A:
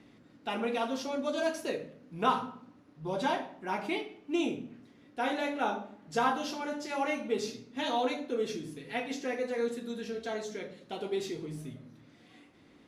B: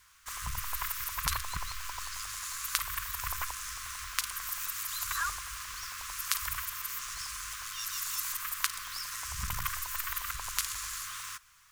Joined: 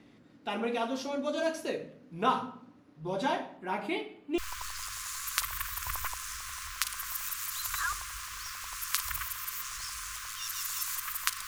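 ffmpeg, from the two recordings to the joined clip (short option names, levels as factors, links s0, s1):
-filter_complex "[0:a]asettb=1/sr,asplit=3[s0][s1][s2];[s0]atrim=end=3.574[s3];[s1]atrim=start=3.57:end=4.38,asetpts=PTS-STARTPTS,afade=t=in:d=0.004:c=qsin,afade=t=out:st=0.806:d=0.004:c=qsin,equalizer=f=5800:t=o:w=0.22:g=-12.5[s4];[s2]atrim=start=4.376[s5];[s3][s4]acrossfade=d=0.004:c1=hsin:c2=qsin[s6];[s6][s5]acrossfade=d=0.004:c1=qsin:c2=hsin,apad=whole_dur=11.47,atrim=end=11.47,atrim=end=4.382[s7];[1:a]atrim=start=1.748:end=8.84[s8];[s7][s8]acrossfade=d=0.004:c1=hsin:c2=hsin"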